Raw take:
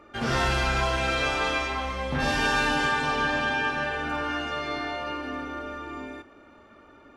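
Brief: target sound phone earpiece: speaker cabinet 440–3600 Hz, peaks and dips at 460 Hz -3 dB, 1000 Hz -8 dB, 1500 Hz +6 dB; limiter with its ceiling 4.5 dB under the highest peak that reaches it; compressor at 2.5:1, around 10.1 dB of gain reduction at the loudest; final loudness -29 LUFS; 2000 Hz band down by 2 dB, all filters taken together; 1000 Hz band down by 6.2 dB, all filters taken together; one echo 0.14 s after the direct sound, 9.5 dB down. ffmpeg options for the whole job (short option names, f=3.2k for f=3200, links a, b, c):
-af "equalizer=f=1k:t=o:g=-4.5,equalizer=f=2k:t=o:g=-5.5,acompressor=threshold=-39dB:ratio=2.5,alimiter=level_in=6.5dB:limit=-24dB:level=0:latency=1,volume=-6.5dB,highpass=440,equalizer=f=460:t=q:w=4:g=-3,equalizer=f=1k:t=q:w=4:g=-8,equalizer=f=1.5k:t=q:w=4:g=6,lowpass=f=3.6k:w=0.5412,lowpass=f=3.6k:w=1.3066,aecho=1:1:140:0.335,volume=11.5dB"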